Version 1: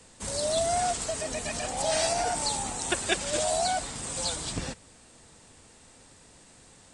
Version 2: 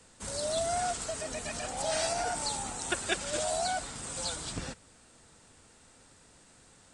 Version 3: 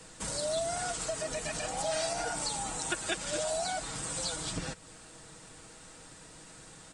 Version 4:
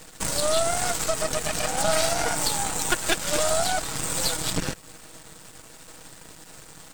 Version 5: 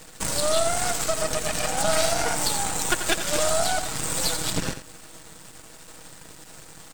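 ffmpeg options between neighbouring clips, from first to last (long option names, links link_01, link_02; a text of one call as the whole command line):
ffmpeg -i in.wav -af "equalizer=frequency=1400:width_type=o:width=0.29:gain=5.5,volume=-4.5dB" out.wav
ffmpeg -i in.wav -af "aecho=1:1:6.3:0.5,acompressor=threshold=-44dB:ratio=2,volume=6.5dB" out.wav
ffmpeg -i in.wav -af "acrusher=bits=7:dc=4:mix=0:aa=0.000001,aeval=exprs='0.133*(cos(1*acos(clip(val(0)/0.133,-1,1)))-cos(1*PI/2))+0.0299*(cos(6*acos(clip(val(0)/0.133,-1,1)))-cos(6*PI/2))':channel_layout=same,volume=8dB" out.wav
ffmpeg -i in.wav -af "aecho=1:1:87:0.299" out.wav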